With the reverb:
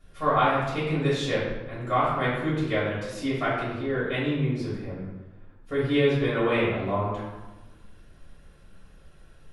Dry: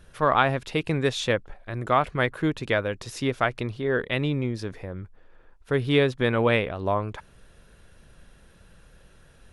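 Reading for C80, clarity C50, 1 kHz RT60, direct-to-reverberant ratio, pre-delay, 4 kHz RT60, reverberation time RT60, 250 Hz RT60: 3.5 dB, 1.0 dB, 1.2 s, -9.5 dB, 4 ms, 0.75 s, 1.1 s, 1.6 s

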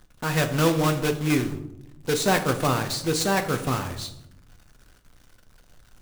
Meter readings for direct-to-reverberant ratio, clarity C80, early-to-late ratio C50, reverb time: 6.0 dB, 14.0 dB, 11.0 dB, 0.80 s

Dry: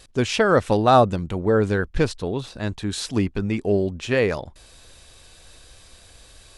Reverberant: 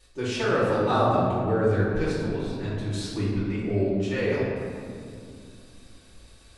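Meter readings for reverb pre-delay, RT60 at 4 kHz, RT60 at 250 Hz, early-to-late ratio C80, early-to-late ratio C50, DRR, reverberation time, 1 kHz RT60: 3 ms, 1.2 s, 3.5 s, 0.5 dB, -1.5 dB, -10.5 dB, 2.4 s, 2.2 s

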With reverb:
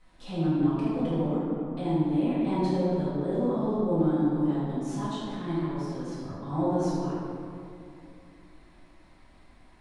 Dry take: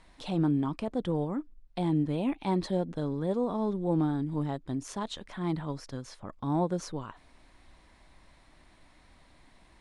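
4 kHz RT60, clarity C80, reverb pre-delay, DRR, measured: 1.3 s, -2.0 dB, 4 ms, -13.5 dB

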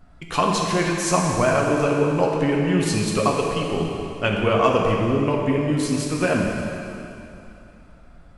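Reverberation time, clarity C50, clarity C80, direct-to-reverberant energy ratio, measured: 2.8 s, 1.0 dB, 2.0 dB, -1.5 dB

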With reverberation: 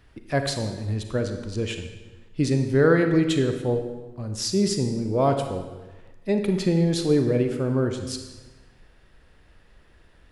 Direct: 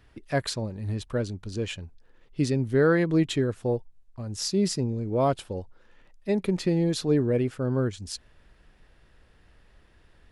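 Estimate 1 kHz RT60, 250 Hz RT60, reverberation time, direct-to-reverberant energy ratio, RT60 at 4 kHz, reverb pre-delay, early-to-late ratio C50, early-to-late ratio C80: 1.2 s, 1.2 s, 1.2 s, 6.0 dB, 1.0 s, 32 ms, 7.0 dB, 8.5 dB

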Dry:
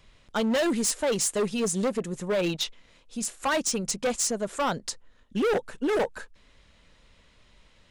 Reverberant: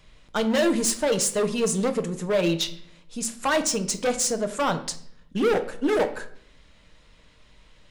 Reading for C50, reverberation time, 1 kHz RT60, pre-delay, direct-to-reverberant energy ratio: 13.0 dB, 0.65 s, 0.55 s, 6 ms, 8.0 dB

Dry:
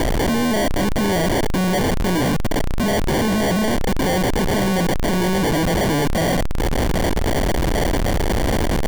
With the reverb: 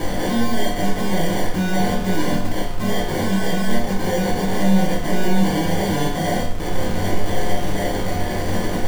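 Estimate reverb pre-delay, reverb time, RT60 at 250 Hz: 4 ms, 0.65 s, 0.65 s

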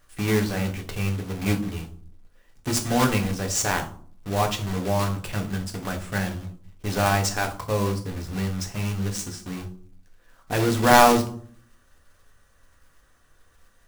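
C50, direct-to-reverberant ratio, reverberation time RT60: 12.0 dB, 3.0 dB, 0.55 s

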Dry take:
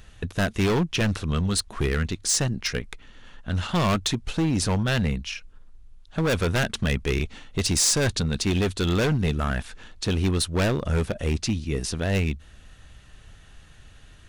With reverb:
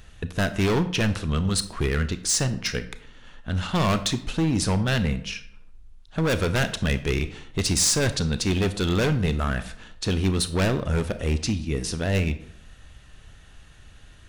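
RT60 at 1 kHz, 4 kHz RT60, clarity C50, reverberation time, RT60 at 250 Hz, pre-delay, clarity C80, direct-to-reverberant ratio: 0.70 s, 0.45 s, 13.5 dB, 0.70 s, 0.70 s, 27 ms, 16.5 dB, 11.0 dB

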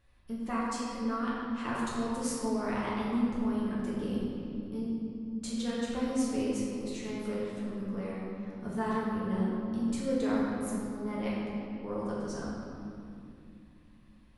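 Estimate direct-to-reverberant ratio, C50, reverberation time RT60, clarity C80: -7.0 dB, -2.0 dB, 2.6 s, -0.5 dB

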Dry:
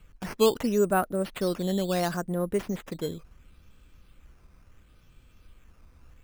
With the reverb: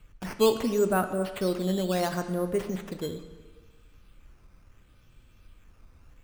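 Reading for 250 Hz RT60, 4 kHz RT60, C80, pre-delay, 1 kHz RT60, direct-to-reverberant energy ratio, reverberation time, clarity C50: 1.3 s, 1.2 s, 11.0 dB, 3 ms, 1.4 s, 7.5 dB, 1.4 s, 9.5 dB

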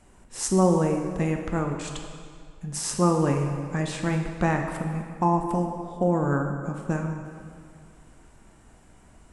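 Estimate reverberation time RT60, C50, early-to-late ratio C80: 2.1 s, 5.0 dB, 6.0 dB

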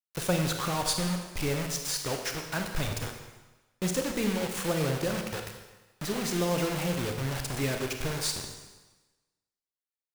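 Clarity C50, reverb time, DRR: 6.0 dB, 1.2 s, 4.0 dB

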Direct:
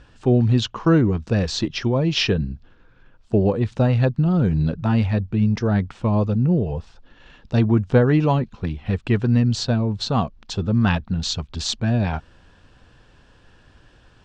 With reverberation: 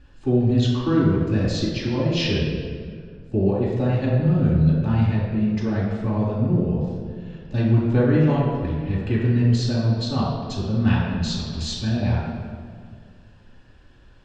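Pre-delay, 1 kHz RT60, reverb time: 3 ms, 1.7 s, 2.0 s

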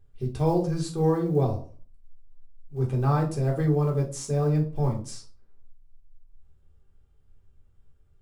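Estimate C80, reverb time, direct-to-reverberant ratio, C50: 16.0 dB, 0.40 s, -2.0 dB, 10.5 dB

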